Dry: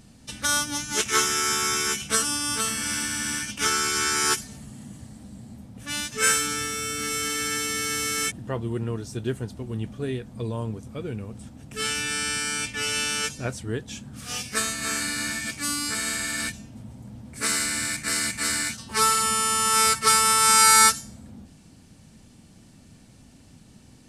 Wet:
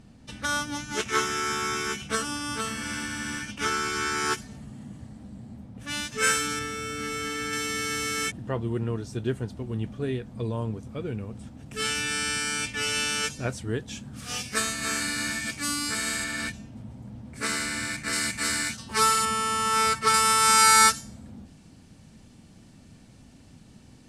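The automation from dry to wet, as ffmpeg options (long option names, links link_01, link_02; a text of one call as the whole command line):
ffmpeg -i in.wav -af "asetnsamples=nb_out_samples=441:pad=0,asendcmd='5.81 lowpass f 4800;6.59 lowpass f 2200;7.53 lowpass f 4500;11.66 lowpass f 8400;16.24 lowpass f 3400;18.13 lowpass f 7300;19.25 lowpass f 2700;20.14 lowpass f 6100',lowpass=frequency=2200:poles=1" out.wav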